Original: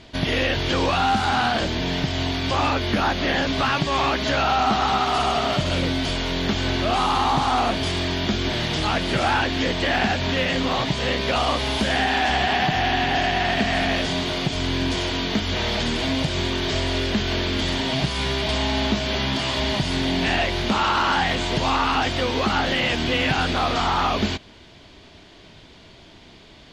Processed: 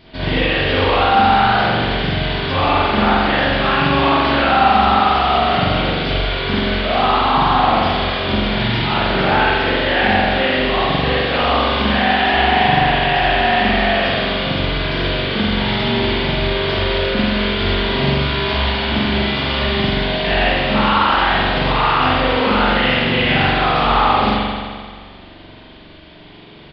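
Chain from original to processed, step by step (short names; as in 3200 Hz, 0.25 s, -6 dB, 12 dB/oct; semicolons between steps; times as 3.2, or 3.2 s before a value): downsampling 11025 Hz; spring tank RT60 1.8 s, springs 43 ms, chirp 35 ms, DRR -9 dB; gain -2.5 dB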